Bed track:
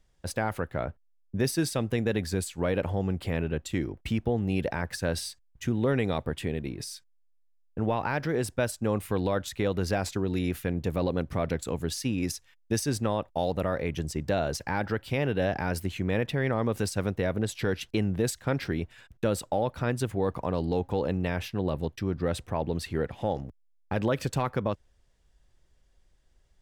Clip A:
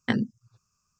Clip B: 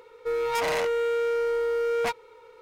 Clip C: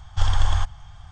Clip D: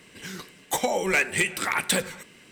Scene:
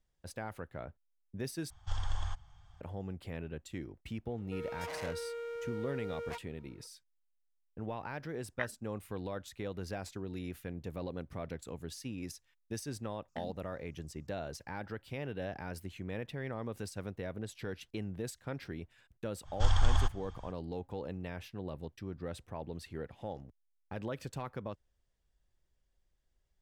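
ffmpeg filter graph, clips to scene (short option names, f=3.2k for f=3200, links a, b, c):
-filter_complex "[3:a]asplit=2[a][b];[1:a]asplit=2[c][d];[0:a]volume=-12.5dB[e];[c]asuperpass=centerf=1400:order=4:qfactor=1.3[f];[d]acompressor=threshold=-35dB:ratio=6:attack=3.2:release=140:knee=1:detection=peak[g];[e]asplit=2[h][i];[h]atrim=end=1.704[j];[a]atrim=end=1.11,asetpts=PTS-STARTPTS,volume=-15.5dB[k];[i]atrim=start=2.806[l];[2:a]atrim=end=2.61,asetpts=PTS-STARTPTS,volume=-15.5dB,afade=t=in:d=0.004:c=hsin,afade=t=out:st=2.606:d=0.004:c=hsin,adelay=4260[m];[f]atrim=end=0.99,asetpts=PTS-STARTPTS,volume=-4.5dB,afade=t=in:d=0.1,afade=t=out:st=0.89:d=0.1,adelay=8510[n];[g]atrim=end=0.99,asetpts=PTS-STARTPTS,volume=-8.5dB,afade=t=in:d=0.004:c=hsin,afade=t=out:st=0.986:d=0.004:c=hsin,adelay=13280[o];[b]atrim=end=1.11,asetpts=PTS-STARTPTS,volume=-7dB,afade=t=in:d=0.05,afade=t=out:st=1.06:d=0.05,adelay=19430[p];[j][k]acrossfade=d=0.004:c1=hsin:c2=hsin[q];[q][l]acrossfade=d=0.004:c1=hsin:c2=hsin[r];[r][m][n][o][p]amix=inputs=5:normalize=0"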